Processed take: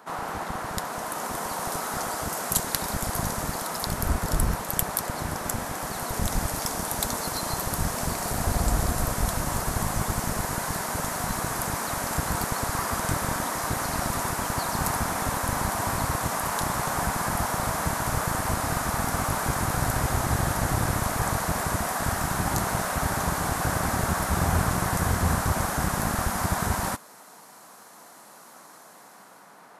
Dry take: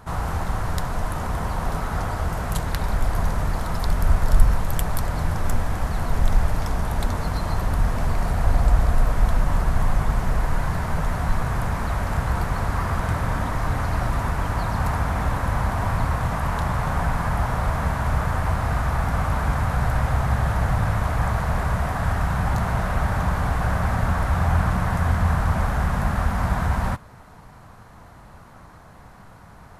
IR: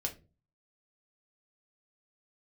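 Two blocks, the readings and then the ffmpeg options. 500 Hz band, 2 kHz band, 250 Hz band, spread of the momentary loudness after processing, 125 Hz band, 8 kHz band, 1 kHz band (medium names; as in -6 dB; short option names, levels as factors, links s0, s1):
-0.5 dB, -0.5 dB, -2.0 dB, 4 LU, -7.0 dB, +11.5 dB, -1.0 dB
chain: -filter_complex "[0:a]highpass=f=110:p=1,acrossover=split=210|5300[s0][s1][s2];[s0]acrusher=bits=3:mix=0:aa=0.5[s3];[s2]dynaudnorm=f=320:g=7:m=5.62[s4];[s3][s1][s4]amix=inputs=3:normalize=0,volume=0.891"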